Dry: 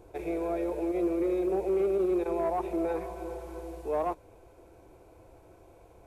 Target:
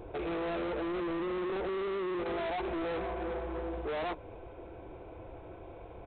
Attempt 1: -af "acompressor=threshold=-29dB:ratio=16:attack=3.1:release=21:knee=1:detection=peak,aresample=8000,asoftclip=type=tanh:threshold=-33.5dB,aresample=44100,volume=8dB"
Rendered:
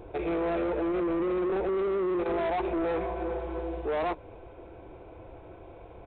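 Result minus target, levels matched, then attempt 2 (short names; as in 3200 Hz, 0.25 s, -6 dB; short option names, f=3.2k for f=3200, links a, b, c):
soft clip: distortion -5 dB
-af "acompressor=threshold=-29dB:ratio=16:attack=3.1:release=21:knee=1:detection=peak,aresample=8000,asoftclip=type=tanh:threshold=-41dB,aresample=44100,volume=8dB"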